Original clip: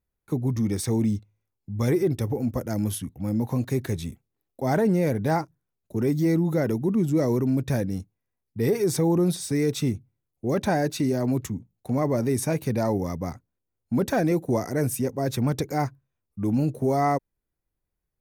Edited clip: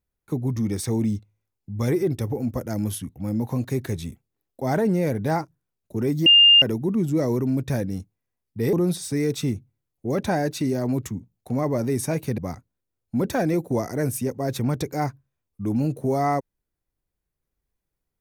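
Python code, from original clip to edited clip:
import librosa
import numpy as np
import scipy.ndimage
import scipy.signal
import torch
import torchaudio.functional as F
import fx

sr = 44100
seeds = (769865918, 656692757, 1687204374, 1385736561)

y = fx.edit(x, sr, fx.bleep(start_s=6.26, length_s=0.36, hz=2810.0, db=-9.5),
    fx.cut(start_s=8.73, length_s=0.39),
    fx.cut(start_s=12.77, length_s=0.39), tone=tone)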